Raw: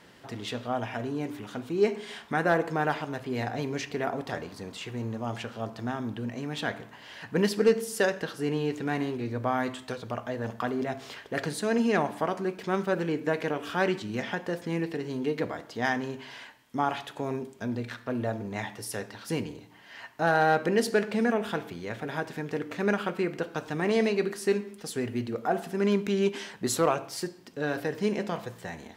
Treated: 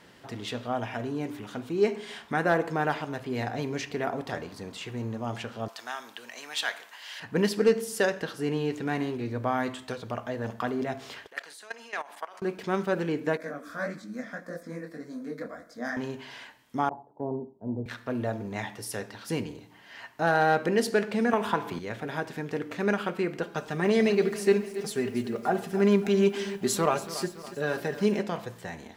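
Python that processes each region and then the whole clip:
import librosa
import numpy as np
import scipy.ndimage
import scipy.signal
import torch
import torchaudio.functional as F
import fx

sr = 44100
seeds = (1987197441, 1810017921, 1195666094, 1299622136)

y = fx.chain(x, sr, fx.highpass(hz=820.0, slope=12),
    fx.high_shelf(hz=2500.0, db=10.0), at=(5.68, 7.2))
y = fx.chain(y, sr, fx.highpass(hz=950.0, slope=12),
    fx.level_steps(step_db=16), at=(11.27, 12.42))
y = fx.chain(y, sr, fx.fixed_phaser(hz=580.0, stages=8),
    fx.detune_double(cents=58), at=(13.37, 15.97))
y = fx.chain(y, sr, fx.ellip_lowpass(hz=910.0, order=4, stop_db=60),
    fx.band_widen(depth_pct=100), at=(16.89, 17.86))
y = fx.chain(y, sr, fx.peak_eq(hz=1000.0, db=14.0, octaves=0.37),
    fx.band_squash(depth_pct=100), at=(21.33, 21.79))
y = fx.chain(y, sr, fx.comb(ms=5.0, depth=0.46),
    fx.echo_crushed(ms=283, feedback_pct=55, bits=8, wet_db=-14.0), at=(23.42, 28.21))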